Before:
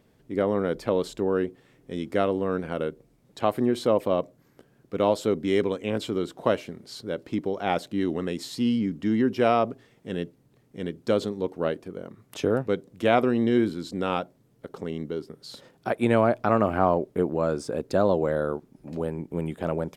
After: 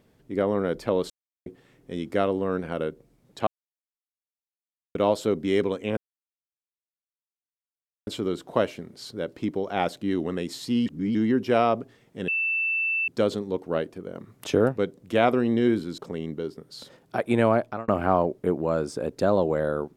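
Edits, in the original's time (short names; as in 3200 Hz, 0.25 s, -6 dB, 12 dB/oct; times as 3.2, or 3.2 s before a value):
1.1–1.46 mute
3.47–4.95 mute
5.97 insert silence 2.10 s
8.76–9.05 reverse
10.18–10.98 bleep 2660 Hz -22.5 dBFS
12.05–12.59 gain +3 dB
13.88–14.7 cut
16.26–16.6 fade out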